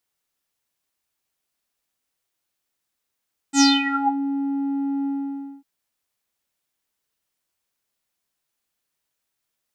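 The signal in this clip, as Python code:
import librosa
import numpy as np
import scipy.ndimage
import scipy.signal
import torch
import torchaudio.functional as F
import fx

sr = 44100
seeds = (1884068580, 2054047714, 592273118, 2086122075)

y = fx.sub_voice(sr, note=61, wave='square', cutoff_hz=510.0, q=11.0, env_oct=4.0, env_s=0.66, attack_ms=76.0, decay_s=0.21, sustain_db=-12.5, release_s=0.57, note_s=1.53, slope=12)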